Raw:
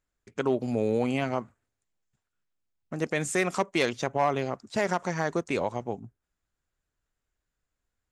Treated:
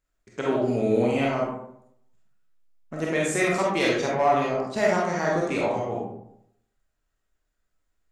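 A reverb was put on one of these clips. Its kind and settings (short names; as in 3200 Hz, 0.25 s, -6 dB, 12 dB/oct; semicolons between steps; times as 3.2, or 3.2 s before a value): digital reverb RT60 0.74 s, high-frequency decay 0.5×, pre-delay 5 ms, DRR -4.5 dB; gain -1.5 dB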